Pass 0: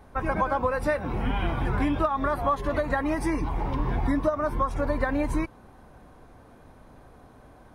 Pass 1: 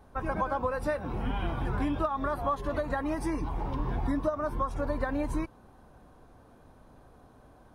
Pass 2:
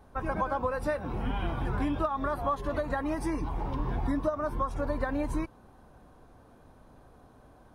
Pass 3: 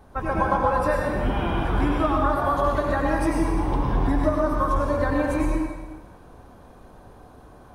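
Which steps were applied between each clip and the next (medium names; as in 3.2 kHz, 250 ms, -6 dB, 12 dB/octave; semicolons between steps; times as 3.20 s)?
peaking EQ 2.1 kHz -5.5 dB 0.47 oct; trim -4.5 dB
no audible change
plate-style reverb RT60 1.3 s, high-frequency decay 0.9×, pre-delay 80 ms, DRR -1.5 dB; trim +5 dB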